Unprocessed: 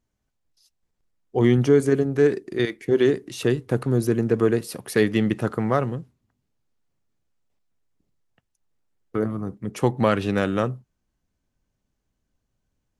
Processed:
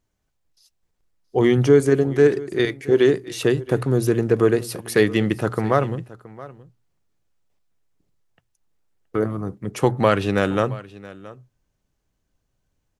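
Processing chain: peaking EQ 230 Hz -5.5 dB 0.43 oct; hum notches 60/120 Hz; delay 673 ms -19 dB; trim +3.5 dB

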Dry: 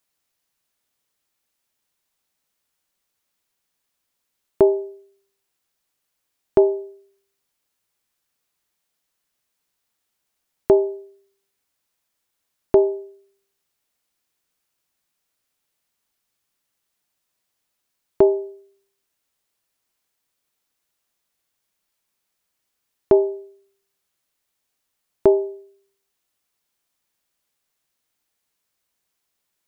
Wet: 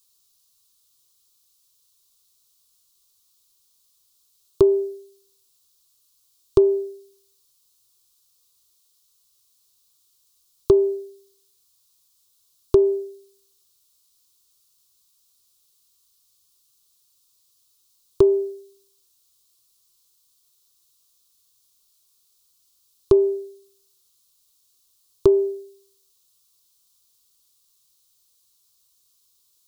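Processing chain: FFT filter 120 Hz 0 dB, 250 Hz -22 dB, 380 Hz -1 dB, 750 Hz -25 dB, 1.1 kHz -2 dB, 1.8 kHz -21 dB, 3.9 kHz +6 dB; compression, threshold -19 dBFS, peak gain reduction 6.5 dB; trim +7.5 dB

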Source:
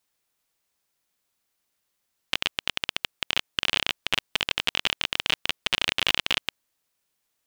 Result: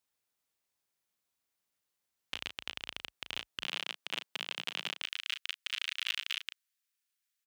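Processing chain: high-pass 43 Hz 24 dB/octave, from 3.62 s 170 Hz, from 5.02 s 1.4 kHz; peak limiter -10 dBFS, peak gain reduction 6 dB; doubling 35 ms -9 dB; trim -8.5 dB

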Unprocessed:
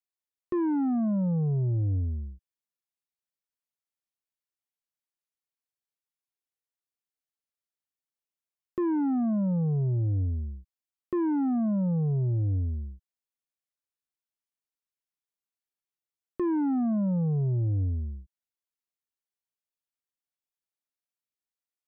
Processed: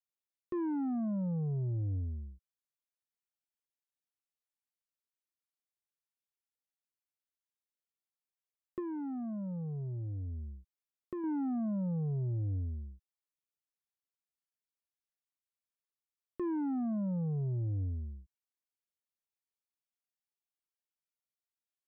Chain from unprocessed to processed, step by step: 8.79–11.24 s: compression, threshold -30 dBFS, peak gain reduction 4.5 dB; trim -7.5 dB

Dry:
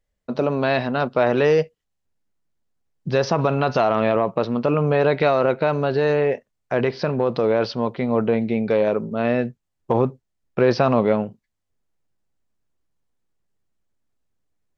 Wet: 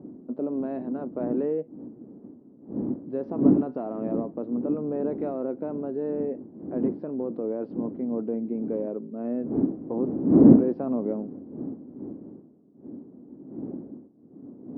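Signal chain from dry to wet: wind noise 210 Hz -17 dBFS; ladder band-pass 310 Hz, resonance 55%; trim +1 dB

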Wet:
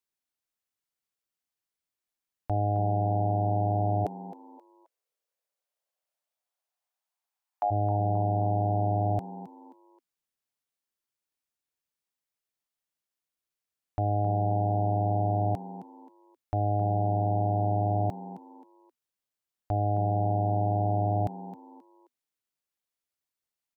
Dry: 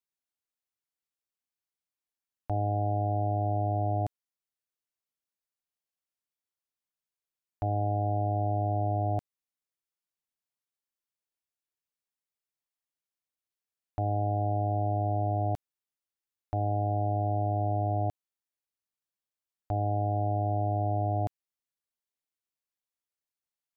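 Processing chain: 4.04–7.70 s: resonant high-pass 380 Hz -> 870 Hz, resonance Q 3.6; frequency-shifting echo 265 ms, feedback 32%, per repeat +81 Hz, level -14.5 dB; trim +2 dB

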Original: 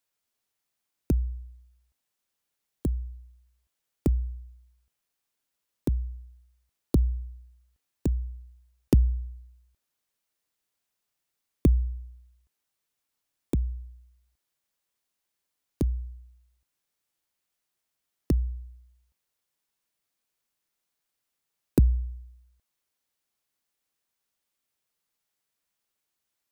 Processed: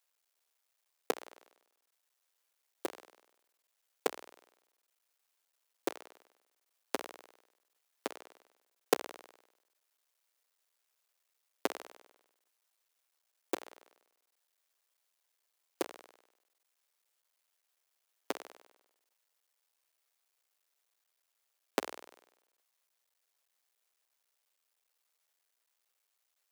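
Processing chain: cycle switcher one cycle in 3, muted; high-pass 430 Hz 24 dB/octave; trim +3.5 dB

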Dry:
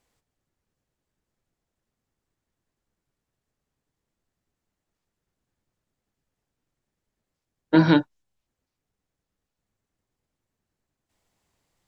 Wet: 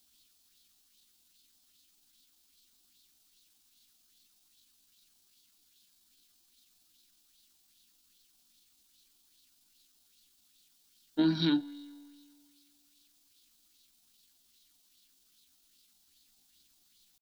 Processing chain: added noise white -64 dBFS; feedback comb 96 Hz, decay 1.4 s, harmonics all, mix 40%; compression 2:1, threshold -23 dBFS, peak gain reduction 5 dB; graphic EQ 125/250/500/1000/2000/4000 Hz -12/+6/-10/-10/-11/+6 dB; tempo 0.69×; peaking EQ 550 Hz -14 dB 0.27 oct; sweeping bell 2.5 Hz 650–4000 Hz +8 dB

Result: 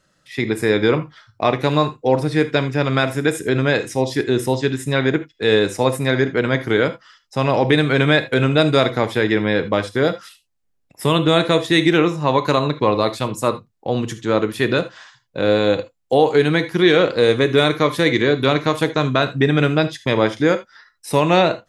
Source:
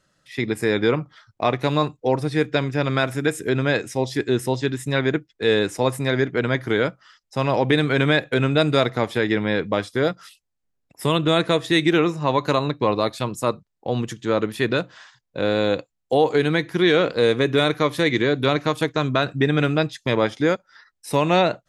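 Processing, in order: gated-style reverb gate 100 ms flat, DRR 10.5 dB; trim +3 dB

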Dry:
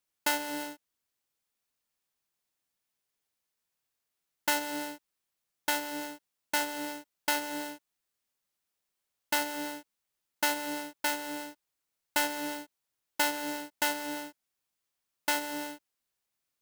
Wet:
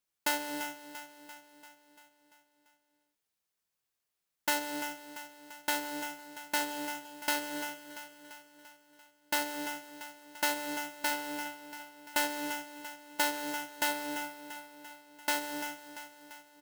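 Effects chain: feedback delay 342 ms, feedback 58%, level -11.5 dB; trim -2 dB

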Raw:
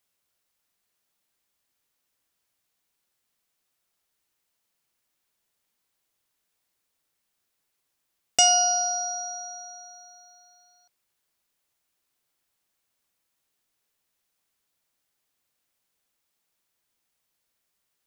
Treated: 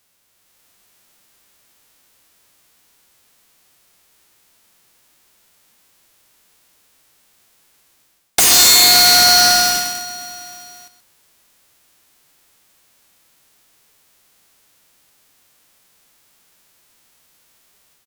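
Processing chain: formants flattened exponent 0.1; in parallel at 0 dB: compression, threshold -29 dBFS, peak gain reduction 15 dB; on the sum: waveshaping leveller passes 3; level rider gain up to 6 dB; sine folder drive 15 dB, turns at -0.5 dBFS; on a send: delay 128 ms -12.5 dB; on the sum: loudspeaker Doppler distortion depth 0.11 ms; trim -4 dB

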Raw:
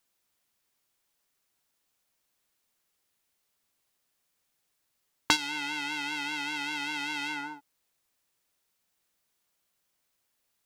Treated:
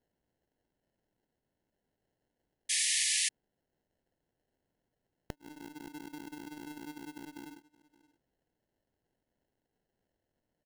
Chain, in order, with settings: tracing distortion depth 0.04 ms; low-pass that closes with the level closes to 810 Hz, closed at -30.5 dBFS; inverted gate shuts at -13 dBFS, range -26 dB; sample-rate reducer 1.2 kHz, jitter 0%; on a send: delay 571 ms -21.5 dB; on the sum: painted sound noise, 2.69–3.29 s, 1.7–11 kHz -25 dBFS; trim -5 dB

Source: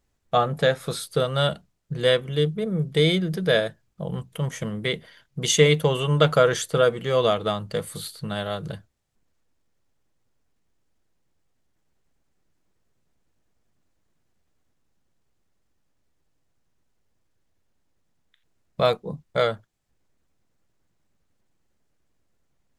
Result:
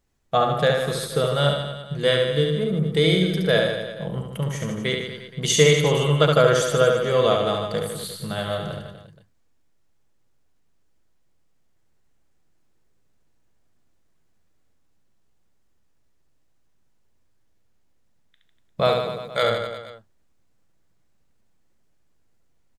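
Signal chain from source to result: 18.99–19.43 s: tilt EQ +3 dB/octave; reverse bouncing-ball echo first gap 70 ms, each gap 1.15×, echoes 5

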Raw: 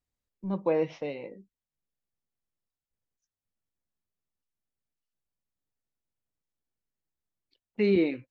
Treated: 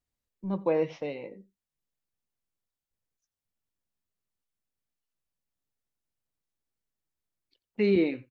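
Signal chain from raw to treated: echo from a far wall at 15 m, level -22 dB

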